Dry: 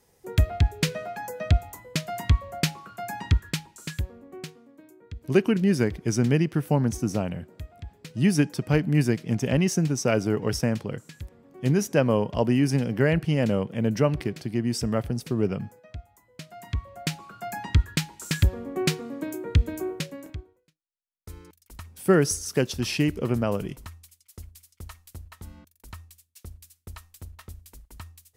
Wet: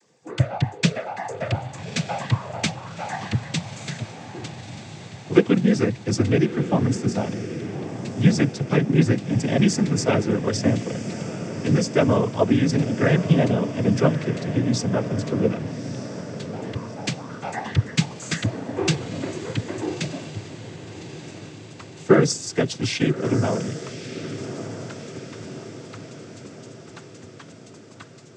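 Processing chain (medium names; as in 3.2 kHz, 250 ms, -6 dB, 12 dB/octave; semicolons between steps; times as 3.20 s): noise-vocoded speech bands 16; vibrato 0.91 Hz 10 cents; echo that smears into a reverb 1228 ms, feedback 56%, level -11 dB; trim +3.5 dB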